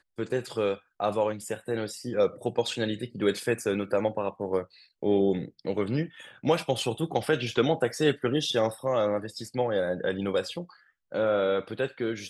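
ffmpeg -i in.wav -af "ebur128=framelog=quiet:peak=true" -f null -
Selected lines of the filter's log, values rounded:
Integrated loudness:
  I:         -28.5 LUFS
  Threshold: -38.7 LUFS
Loudness range:
  LRA:         2.2 LU
  Threshold: -48.4 LUFS
  LRA low:   -29.4 LUFS
  LRA high:  -27.2 LUFS
True peak:
  Peak:      -10.3 dBFS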